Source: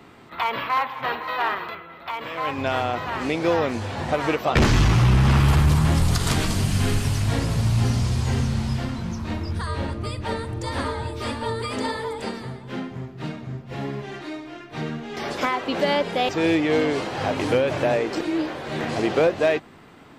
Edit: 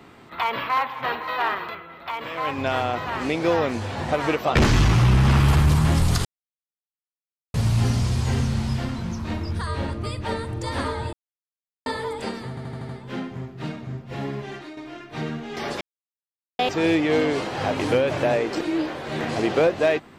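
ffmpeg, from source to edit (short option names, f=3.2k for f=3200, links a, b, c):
-filter_complex "[0:a]asplit=13[a][b][c][d][e][f][g][h][i][j][k][l][m];[a]atrim=end=6.25,asetpts=PTS-STARTPTS,afade=t=out:st=6.246:d=0.004:c=hsin[n];[b]atrim=start=6.25:end=7.54,asetpts=PTS-STARTPTS,volume=0[o];[c]atrim=start=7.54:end=11.13,asetpts=PTS-STARTPTS,afade=t=in:d=0.004:c=hsin,afade=t=out:st=3.586:d=0.004:c=hsin[p];[d]atrim=start=11.13:end=11.86,asetpts=PTS-STARTPTS,volume=0[q];[e]atrim=start=11.86:end=12.572,asetpts=PTS-STARTPTS,afade=t=in:d=0.004:c=hsin[r];[f]atrim=start=12.488:end=12.572[s];[g]atrim=start=12.488:end=12.572[t];[h]atrim=start=12.488:end=12.572[u];[i]atrim=start=12.488:end=12.572[v];[j]atrim=start=12.488:end=14.37,asetpts=PTS-STARTPTS,afade=t=out:st=1.632:d=0.25:silence=0.316228[w];[k]atrim=start=14.37:end=15.41,asetpts=PTS-STARTPTS,afade=t=in:d=0.004:c=hsin:silence=0.316228,afade=t=out:st=1.036:d=0.004:c=hsin[x];[l]atrim=start=15.41:end=16.19,asetpts=PTS-STARTPTS,volume=0[y];[m]atrim=start=16.19,asetpts=PTS-STARTPTS,afade=t=in:d=0.004:c=hsin[z];[n][o][p][q][r]concat=n=5:v=0:a=1[aa];[aa][s]acrossfade=d=0.004:c1=hsin:c2=hsin[ab];[ab][t]acrossfade=d=0.004:c1=hsin:c2=hsin[ac];[ac][u]acrossfade=d=0.004:c1=hsin:c2=hsin[ad];[ad][v]acrossfade=d=0.004:c1=hsin:c2=hsin[ae];[w][x][y][z]concat=n=4:v=0:a=1[af];[ae][af]acrossfade=d=0.004:c1=hsin:c2=hsin"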